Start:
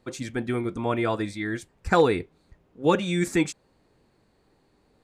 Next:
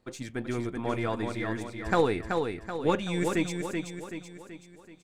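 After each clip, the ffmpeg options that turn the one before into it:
-filter_complex "[0:a]aeval=exprs='if(lt(val(0),0),0.708*val(0),val(0))':c=same,asplit=2[a][b];[b]aecho=0:1:380|760|1140|1520|1900|2280:0.562|0.27|0.13|0.0622|0.0299|0.0143[c];[a][c]amix=inputs=2:normalize=0,volume=-4dB"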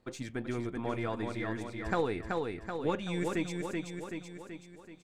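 -af "highshelf=f=6.8k:g=-5.5,acompressor=threshold=-37dB:ratio=1.5"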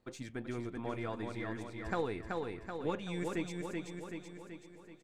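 -filter_complex "[0:a]asplit=2[a][b];[b]adelay=500,lowpass=f=3.6k:p=1,volume=-18dB,asplit=2[c][d];[d]adelay=500,lowpass=f=3.6k:p=1,volume=0.5,asplit=2[e][f];[f]adelay=500,lowpass=f=3.6k:p=1,volume=0.5,asplit=2[g][h];[h]adelay=500,lowpass=f=3.6k:p=1,volume=0.5[i];[a][c][e][g][i]amix=inputs=5:normalize=0,volume=-4.5dB"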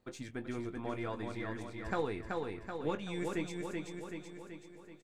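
-filter_complex "[0:a]asplit=2[a][b];[b]adelay=20,volume=-11dB[c];[a][c]amix=inputs=2:normalize=0"

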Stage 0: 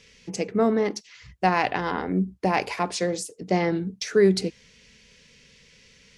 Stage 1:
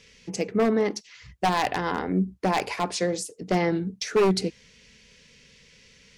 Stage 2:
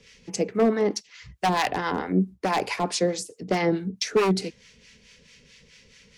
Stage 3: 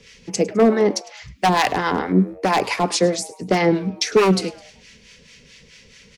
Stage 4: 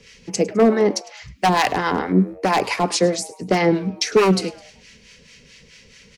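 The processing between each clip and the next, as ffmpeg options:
-af "aeval=exprs='0.2*(abs(mod(val(0)/0.2+3,4)-2)-1)':c=same"
-filter_complex "[0:a]acrossover=split=130|1000[a][b][c];[a]acompressor=threshold=-47dB:ratio=6[d];[d][b][c]amix=inputs=3:normalize=0,acrossover=split=830[e][f];[e]aeval=exprs='val(0)*(1-0.7/2+0.7/2*cos(2*PI*4.6*n/s))':c=same[g];[f]aeval=exprs='val(0)*(1-0.7/2-0.7/2*cos(2*PI*4.6*n/s))':c=same[h];[g][h]amix=inputs=2:normalize=0,volume=4dB"
-filter_complex "[0:a]asplit=4[a][b][c][d];[b]adelay=104,afreqshift=140,volume=-20dB[e];[c]adelay=208,afreqshift=280,volume=-27.3dB[f];[d]adelay=312,afreqshift=420,volume=-34.7dB[g];[a][e][f][g]amix=inputs=4:normalize=0,volume=6dB"
-af "bandreject=f=3.5k:w=27"

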